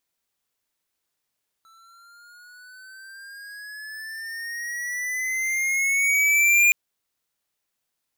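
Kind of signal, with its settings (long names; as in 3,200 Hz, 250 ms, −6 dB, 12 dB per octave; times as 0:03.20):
pitch glide with a swell square, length 5.07 s, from 1,320 Hz, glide +10.5 semitones, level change +38 dB, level −15.5 dB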